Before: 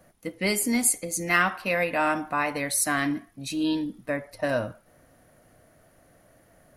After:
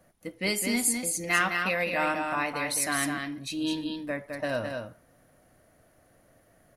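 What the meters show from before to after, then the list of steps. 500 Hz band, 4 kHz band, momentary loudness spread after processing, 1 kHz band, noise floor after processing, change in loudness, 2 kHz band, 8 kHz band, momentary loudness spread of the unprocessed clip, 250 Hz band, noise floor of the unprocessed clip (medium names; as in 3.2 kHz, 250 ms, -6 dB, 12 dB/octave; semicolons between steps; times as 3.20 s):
-3.0 dB, +1.0 dB, 10 LU, -3.0 dB, -63 dBFS, -2.5 dB, -1.5 dB, -2.5 dB, 10 LU, -3.5 dB, -60 dBFS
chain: dynamic bell 3.6 kHz, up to +5 dB, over -40 dBFS, Q 0.98; delay 210 ms -5 dB; trim -4.5 dB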